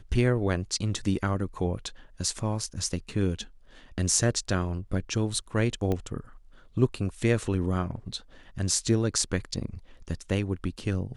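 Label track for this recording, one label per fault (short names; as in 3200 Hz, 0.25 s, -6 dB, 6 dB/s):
5.920000	5.920000	pop -17 dBFS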